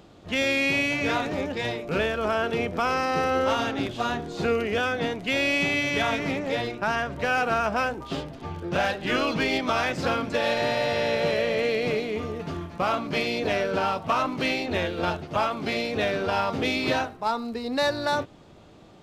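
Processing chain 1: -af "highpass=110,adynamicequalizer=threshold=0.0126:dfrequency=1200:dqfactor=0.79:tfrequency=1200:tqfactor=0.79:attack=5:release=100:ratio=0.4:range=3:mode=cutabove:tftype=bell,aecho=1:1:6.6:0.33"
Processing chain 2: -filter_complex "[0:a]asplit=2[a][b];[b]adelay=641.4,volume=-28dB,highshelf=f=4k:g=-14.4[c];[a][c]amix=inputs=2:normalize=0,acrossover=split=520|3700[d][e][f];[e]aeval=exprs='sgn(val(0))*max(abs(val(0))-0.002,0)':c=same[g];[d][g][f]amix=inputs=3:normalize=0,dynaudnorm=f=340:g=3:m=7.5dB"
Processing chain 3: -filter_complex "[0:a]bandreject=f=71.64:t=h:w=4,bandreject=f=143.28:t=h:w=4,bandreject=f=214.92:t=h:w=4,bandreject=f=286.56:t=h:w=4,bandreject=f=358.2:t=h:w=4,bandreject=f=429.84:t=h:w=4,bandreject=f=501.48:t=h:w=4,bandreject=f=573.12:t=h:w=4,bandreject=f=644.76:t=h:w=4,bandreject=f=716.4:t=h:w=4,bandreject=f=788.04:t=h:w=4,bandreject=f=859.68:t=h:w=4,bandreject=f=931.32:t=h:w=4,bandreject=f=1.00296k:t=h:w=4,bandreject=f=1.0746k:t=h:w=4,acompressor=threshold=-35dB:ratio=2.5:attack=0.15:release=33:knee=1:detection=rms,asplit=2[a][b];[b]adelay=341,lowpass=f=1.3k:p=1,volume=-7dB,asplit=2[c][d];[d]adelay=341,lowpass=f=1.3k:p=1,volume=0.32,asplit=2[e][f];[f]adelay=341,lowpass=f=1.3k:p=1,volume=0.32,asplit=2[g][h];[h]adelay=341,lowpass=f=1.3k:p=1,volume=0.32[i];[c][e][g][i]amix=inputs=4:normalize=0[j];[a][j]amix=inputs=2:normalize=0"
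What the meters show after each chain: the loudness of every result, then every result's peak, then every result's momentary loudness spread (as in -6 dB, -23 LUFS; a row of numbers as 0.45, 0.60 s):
-27.0, -19.0, -35.5 LUFS; -12.5, -4.5, -23.5 dBFS; 6, 6, 3 LU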